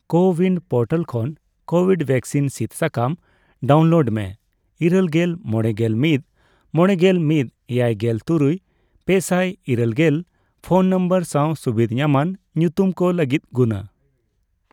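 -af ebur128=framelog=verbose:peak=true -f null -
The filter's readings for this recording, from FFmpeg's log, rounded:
Integrated loudness:
  I:         -19.5 LUFS
  Threshold: -30.0 LUFS
Loudness range:
  LRA:         1.5 LU
  Threshold: -39.9 LUFS
  LRA low:   -20.8 LUFS
  LRA high:  -19.3 LUFS
True peak:
  Peak:       -4.3 dBFS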